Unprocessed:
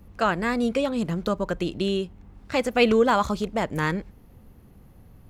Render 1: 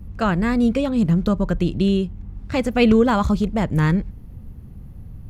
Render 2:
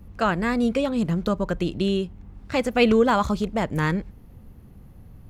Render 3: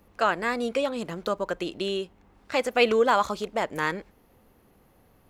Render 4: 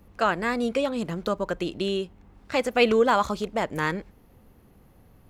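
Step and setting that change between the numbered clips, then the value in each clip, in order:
tone controls, bass: +14, +5, -14, -6 dB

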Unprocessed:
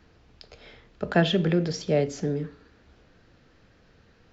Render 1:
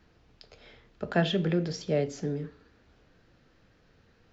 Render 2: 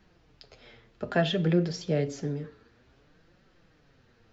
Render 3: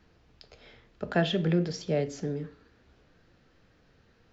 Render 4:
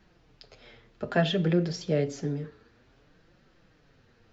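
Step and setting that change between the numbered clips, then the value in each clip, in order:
flange, regen: -75, +32, +85, -12%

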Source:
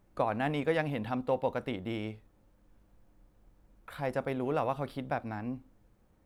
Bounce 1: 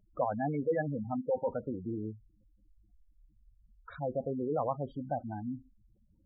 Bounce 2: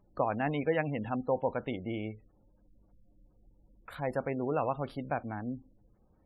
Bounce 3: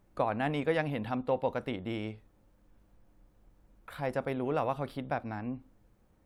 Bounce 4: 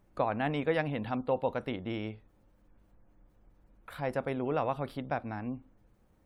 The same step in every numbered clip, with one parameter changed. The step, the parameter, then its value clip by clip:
spectral gate, under each frame's peak: -10, -25, -55, -45 dB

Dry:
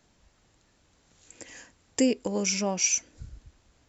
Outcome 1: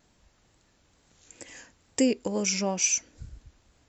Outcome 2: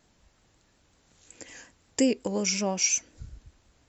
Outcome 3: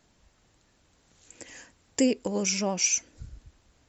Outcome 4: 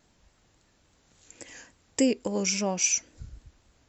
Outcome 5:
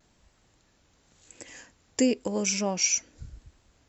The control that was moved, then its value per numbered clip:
vibrato, rate: 2.2, 5.5, 13, 3.6, 0.93 Hz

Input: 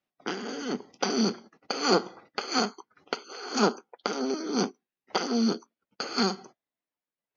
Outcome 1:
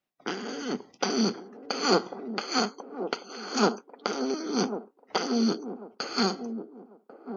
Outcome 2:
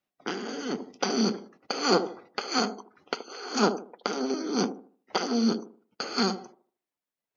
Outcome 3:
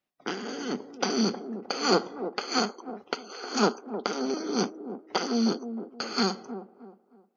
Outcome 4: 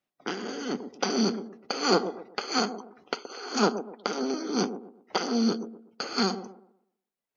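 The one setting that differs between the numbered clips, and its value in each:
band-limited delay, time: 1094, 76, 311, 123 ms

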